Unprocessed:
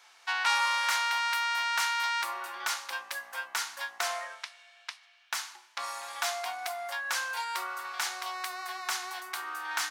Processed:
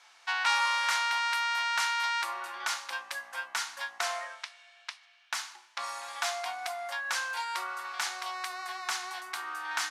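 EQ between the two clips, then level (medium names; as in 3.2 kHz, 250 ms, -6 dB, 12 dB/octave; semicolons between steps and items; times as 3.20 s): Bessel low-pass 10 kHz, order 8; peaking EQ 430 Hz -4.5 dB 0.36 oct; 0.0 dB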